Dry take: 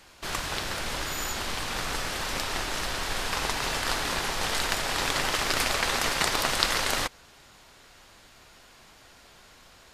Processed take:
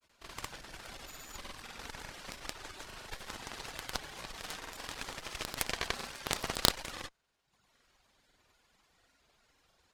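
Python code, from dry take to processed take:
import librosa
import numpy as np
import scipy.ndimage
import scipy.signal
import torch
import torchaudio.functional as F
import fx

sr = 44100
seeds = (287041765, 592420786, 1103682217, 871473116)

y = fx.dereverb_blind(x, sr, rt60_s=0.96)
y = fx.granulator(y, sr, seeds[0], grain_ms=100.0, per_s=20.0, spray_ms=100.0, spread_st=0)
y = fx.cheby_harmonics(y, sr, harmonics=(6, 7, 8), levels_db=(-7, -20, -17), full_scale_db=-1.5)
y = y * 10.0 ** (-2.5 / 20.0)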